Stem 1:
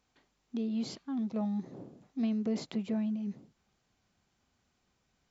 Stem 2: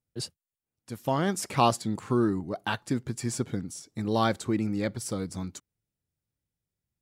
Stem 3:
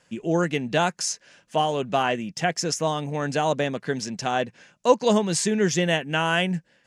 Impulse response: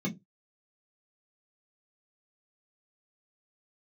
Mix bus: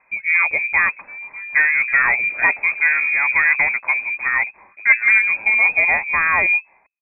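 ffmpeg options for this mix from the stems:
-filter_complex "[0:a]volume=0.531[s0];[1:a]adelay=800,volume=0.299[s1];[2:a]lowshelf=f=370:g=4,volume=1.12[s2];[s0][s1][s2]amix=inputs=3:normalize=0,dynaudnorm=f=460:g=5:m=1.58,aeval=exprs='0.841*(cos(1*acos(clip(val(0)/0.841,-1,1)))-cos(1*PI/2))+0.0237*(cos(4*acos(clip(val(0)/0.841,-1,1)))-cos(4*PI/2))+0.0668*(cos(5*acos(clip(val(0)/0.841,-1,1)))-cos(5*PI/2))+0.00473*(cos(8*acos(clip(val(0)/0.841,-1,1)))-cos(8*PI/2))':c=same,lowpass=f=2200:t=q:w=0.5098,lowpass=f=2200:t=q:w=0.6013,lowpass=f=2200:t=q:w=0.9,lowpass=f=2200:t=q:w=2.563,afreqshift=-2600"

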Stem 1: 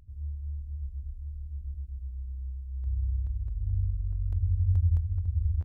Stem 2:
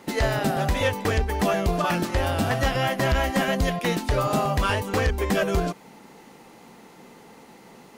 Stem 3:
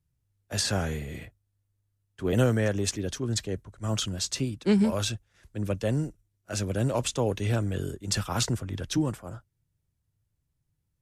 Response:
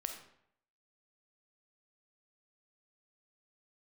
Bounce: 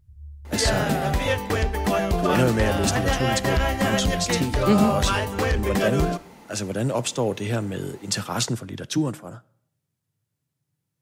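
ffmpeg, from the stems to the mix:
-filter_complex "[0:a]equalizer=f=120:t=o:w=1.4:g=11.5,acompressor=threshold=0.0631:ratio=6,volume=0.299[s0];[1:a]adelay=450,volume=0.75,asplit=2[s1][s2];[s2]volume=0.422[s3];[2:a]highpass=f=120:w=0.5412,highpass=f=120:w=1.3066,volume=1.26,asplit=2[s4][s5];[s5]volume=0.211[s6];[3:a]atrim=start_sample=2205[s7];[s3][s6]amix=inputs=2:normalize=0[s8];[s8][s7]afir=irnorm=-1:irlink=0[s9];[s0][s1][s4][s9]amix=inputs=4:normalize=0"

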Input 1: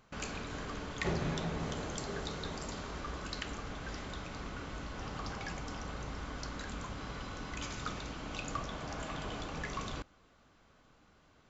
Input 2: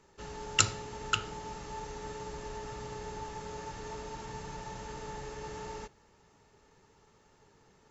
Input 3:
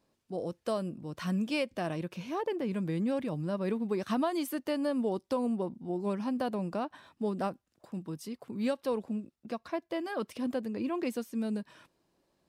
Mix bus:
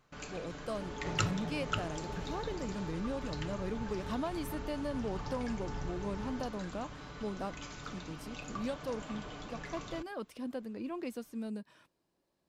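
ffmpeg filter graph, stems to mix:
-filter_complex "[0:a]aecho=1:1:6.8:0.42,volume=0.531[s0];[1:a]lowpass=f=1700:p=1,asubboost=boost=2.5:cutoff=230,adelay=600,volume=0.841[s1];[2:a]volume=0.473,asplit=2[s2][s3];[s3]apad=whole_len=374874[s4];[s1][s4]sidechaincompress=threshold=0.0112:ratio=8:attack=33:release=177[s5];[s0][s5][s2]amix=inputs=3:normalize=0"

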